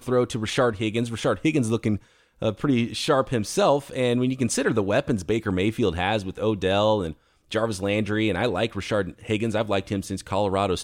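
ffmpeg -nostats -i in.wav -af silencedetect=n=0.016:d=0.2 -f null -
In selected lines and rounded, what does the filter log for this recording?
silence_start: 1.98
silence_end: 2.42 | silence_duration: 0.44
silence_start: 7.12
silence_end: 7.51 | silence_duration: 0.39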